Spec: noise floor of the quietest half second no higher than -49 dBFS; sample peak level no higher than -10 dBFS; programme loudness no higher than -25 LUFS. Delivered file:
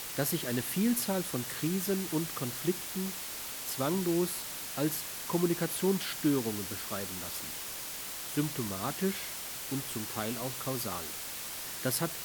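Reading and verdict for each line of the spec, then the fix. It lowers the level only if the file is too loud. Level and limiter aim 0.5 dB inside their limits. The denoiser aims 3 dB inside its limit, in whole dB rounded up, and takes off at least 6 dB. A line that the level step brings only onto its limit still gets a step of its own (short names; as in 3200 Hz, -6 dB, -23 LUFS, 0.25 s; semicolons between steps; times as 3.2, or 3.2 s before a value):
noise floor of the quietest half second -40 dBFS: fail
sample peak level -16.0 dBFS: OK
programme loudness -33.0 LUFS: OK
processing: denoiser 12 dB, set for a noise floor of -40 dBFS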